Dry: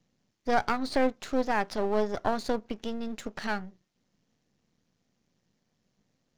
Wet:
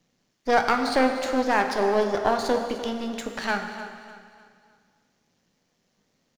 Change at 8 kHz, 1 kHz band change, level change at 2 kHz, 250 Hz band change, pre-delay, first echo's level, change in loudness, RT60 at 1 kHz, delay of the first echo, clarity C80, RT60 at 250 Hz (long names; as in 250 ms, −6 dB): +7.5 dB, +6.5 dB, +7.5 dB, +4.0 dB, 5 ms, −14.0 dB, +6.0 dB, 2.1 s, 300 ms, 6.5 dB, 2.1 s